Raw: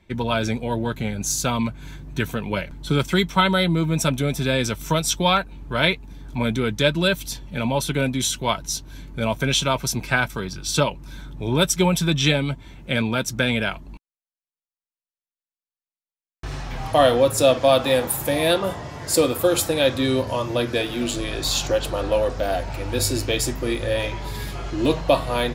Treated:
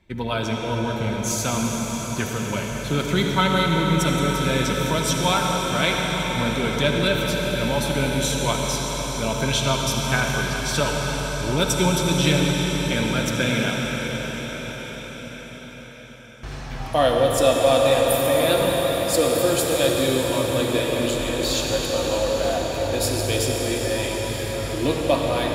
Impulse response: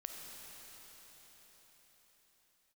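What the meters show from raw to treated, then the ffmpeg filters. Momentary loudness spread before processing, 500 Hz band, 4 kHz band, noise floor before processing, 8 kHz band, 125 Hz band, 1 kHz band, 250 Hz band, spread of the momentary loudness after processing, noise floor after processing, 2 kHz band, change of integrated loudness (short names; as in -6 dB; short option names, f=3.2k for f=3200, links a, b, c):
10 LU, +0.5 dB, +0.5 dB, under -85 dBFS, +0.5 dB, +0.5 dB, +0.5 dB, +0.5 dB, 8 LU, -36 dBFS, +0.5 dB, +0.5 dB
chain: -filter_complex "[1:a]atrim=start_sample=2205,asetrate=30429,aresample=44100[a];[0:a][a]afir=irnorm=-1:irlink=0"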